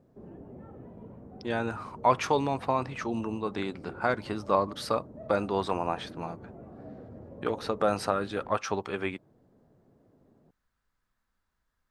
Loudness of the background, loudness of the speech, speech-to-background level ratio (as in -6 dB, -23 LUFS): -47.5 LUFS, -30.5 LUFS, 17.0 dB